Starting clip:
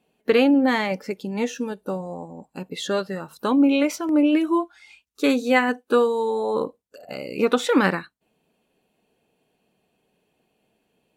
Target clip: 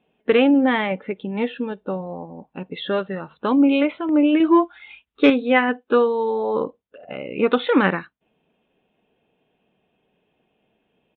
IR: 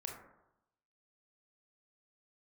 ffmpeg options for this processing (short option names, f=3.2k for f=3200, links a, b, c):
-filter_complex "[0:a]aresample=8000,aresample=44100,asettb=1/sr,asplit=3[a][b][c];[a]atrim=end=4.404[d];[b]atrim=start=4.4:end=5.3,asetpts=PTS-STARTPTS,afade=t=in:d=0.004:c=qsin,afade=t=out:st=0.896:d=0.004:c=qsin,acontrast=33[e];[c]atrim=start=5.296[f];[d][e]acrossfade=d=0.004:c1=hsin:c2=qsin[g];[g][f]acrossfade=d=0.004:c1=qsin:c2=hsin,volume=1.5dB"